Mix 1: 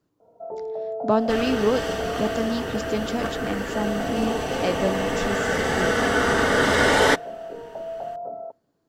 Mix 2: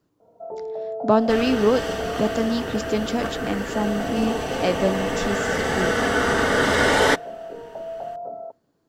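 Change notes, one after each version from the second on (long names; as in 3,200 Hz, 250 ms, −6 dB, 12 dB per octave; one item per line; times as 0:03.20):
speech +3.0 dB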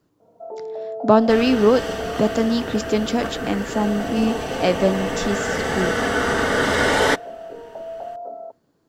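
speech +3.5 dB
first sound: add linear-phase brick-wall high-pass 200 Hz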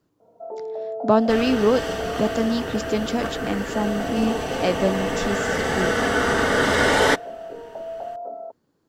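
speech: send off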